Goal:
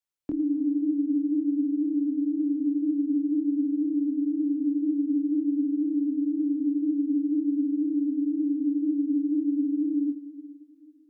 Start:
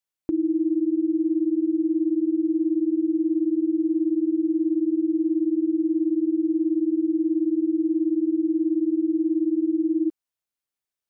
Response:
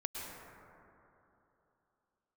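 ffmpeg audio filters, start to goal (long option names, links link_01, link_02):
-filter_complex "[0:a]flanger=delay=19:depth=7.4:speed=2,afreqshift=-25,asplit=2[link_01][link_02];[1:a]atrim=start_sample=2205,lowshelf=frequency=290:gain=-8.5,adelay=111[link_03];[link_02][link_03]afir=irnorm=-1:irlink=0,volume=-12dB[link_04];[link_01][link_04]amix=inputs=2:normalize=0"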